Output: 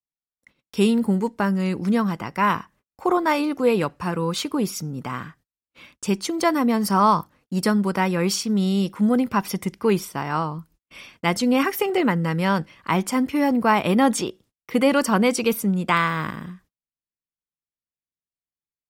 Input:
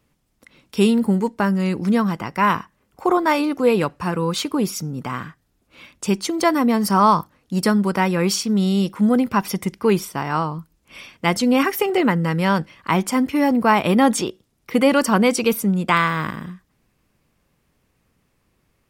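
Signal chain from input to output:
noise gate −49 dBFS, range −38 dB
level −2.5 dB

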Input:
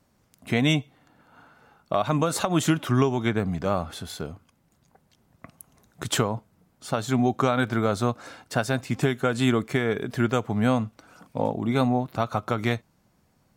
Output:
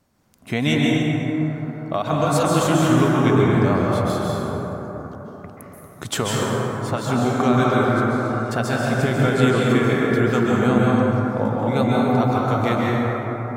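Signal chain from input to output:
0:07.84–0:08.43: downward compressor 3 to 1, threshold −34 dBFS, peak gain reduction 12 dB
dense smooth reverb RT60 4.3 s, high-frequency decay 0.3×, pre-delay 120 ms, DRR −5 dB

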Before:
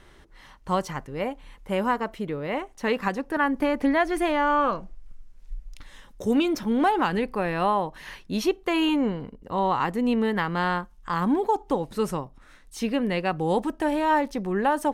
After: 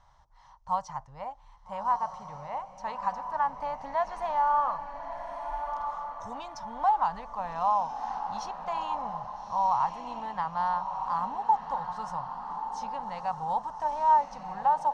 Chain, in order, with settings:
drawn EQ curve 130 Hz 0 dB, 370 Hz −26 dB, 640 Hz +2 dB, 920 Hz +12 dB, 1,500 Hz −5 dB, 2,600 Hz −11 dB, 5,900 Hz +2 dB, 12,000 Hz −24 dB
feedback delay with all-pass diffusion 1,294 ms, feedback 41%, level −7 dB
level −9 dB

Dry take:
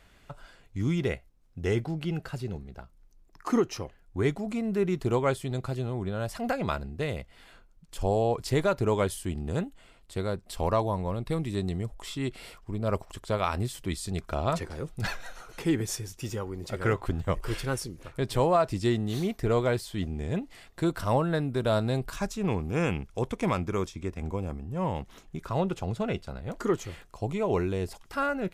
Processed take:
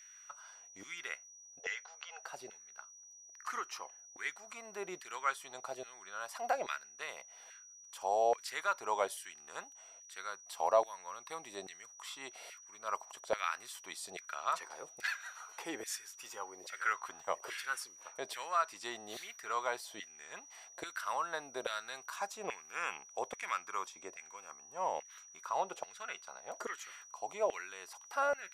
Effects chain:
0:01.59–0:02.24: linear-phase brick-wall band-pass 420–7,600 Hz
auto-filter high-pass saw down 1.2 Hz 590–1,900 Hz
steady tone 5,800 Hz −47 dBFS
level −7 dB

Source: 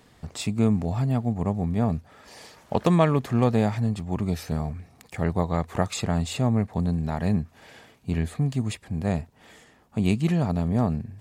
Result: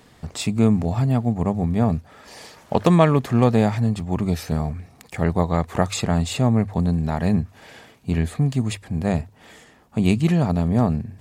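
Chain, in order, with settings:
mains-hum notches 50/100 Hz
level +4.5 dB

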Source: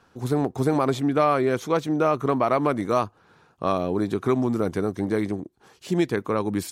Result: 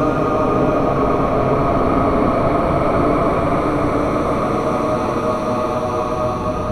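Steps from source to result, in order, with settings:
wind on the microphone 290 Hz −29 dBFS
extreme stretch with random phases 6.4×, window 1.00 s, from 0:02.11
level +5 dB

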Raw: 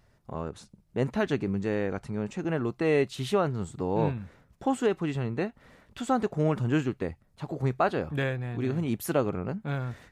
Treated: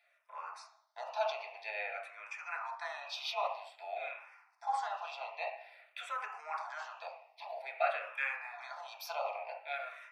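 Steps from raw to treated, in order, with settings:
0:02.00–0:04.18: frequency shifter −130 Hz
parametric band 2,500 Hz +10.5 dB 0.33 octaves
notch filter 4,100 Hz, Q 22
convolution reverb RT60 0.60 s, pre-delay 3 ms, DRR −3 dB
brickwall limiter −4.5 dBFS, peak gain reduction 8.5 dB
Chebyshev high-pass filter 660 Hz, order 6
frequency shifter mixed with the dry sound −0.51 Hz
level −6.5 dB

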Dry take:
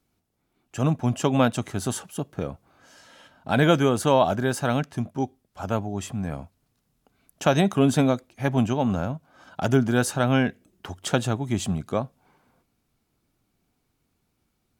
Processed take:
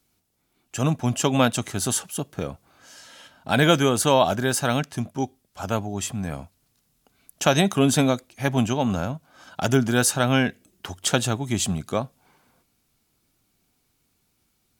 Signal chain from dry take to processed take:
high-shelf EQ 2,400 Hz +9.5 dB

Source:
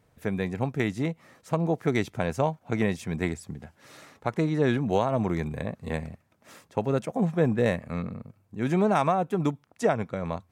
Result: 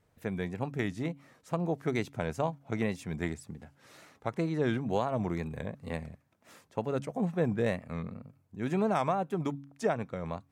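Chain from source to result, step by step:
tape wow and flutter 80 cents
hum removal 139.5 Hz, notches 2
level −5.5 dB

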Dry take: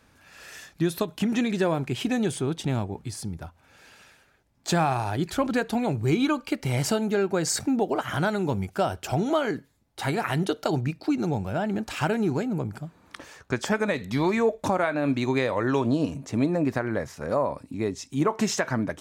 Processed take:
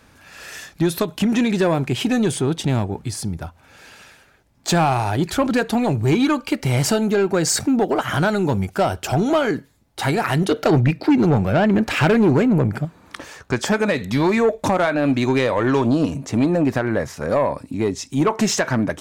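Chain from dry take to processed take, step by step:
0:10.51–0:12.85: octave-band graphic EQ 125/250/500/2,000/8,000 Hz +5/+4/+6/+8/−3 dB
soft clipping −18 dBFS, distortion −15 dB
level +8 dB

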